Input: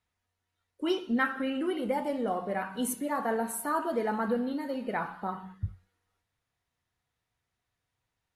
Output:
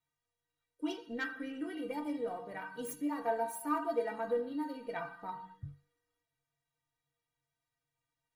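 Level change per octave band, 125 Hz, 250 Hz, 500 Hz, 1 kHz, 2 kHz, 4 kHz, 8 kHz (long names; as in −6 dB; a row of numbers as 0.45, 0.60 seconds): −11.0, −7.0, −5.0, −6.5, −7.0, −9.5, −10.5 decibels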